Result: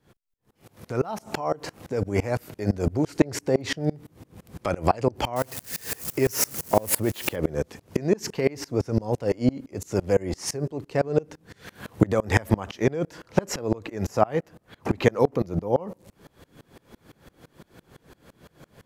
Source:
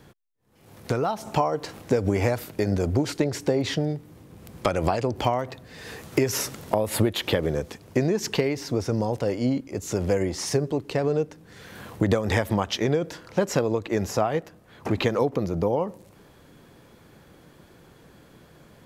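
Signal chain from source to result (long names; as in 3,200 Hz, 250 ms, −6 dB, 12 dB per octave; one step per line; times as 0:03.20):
0:05.36–0:07.36: spike at every zero crossing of −24.5 dBFS
dynamic equaliser 3,600 Hz, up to −6 dB, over −51 dBFS, Q 3
tremolo with a ramp in dB swelling 5.9 Hz, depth 28 dB
level +7.5 dB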